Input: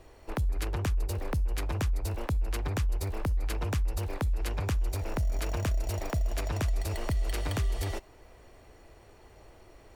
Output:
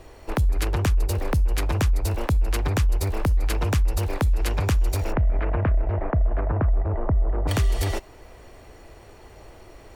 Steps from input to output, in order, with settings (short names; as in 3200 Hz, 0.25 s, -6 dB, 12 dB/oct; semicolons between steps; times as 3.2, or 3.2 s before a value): 5.11–7.47 LPF 2300 Hz -> 1100 Hz 24 dB/oct; gain +8 dB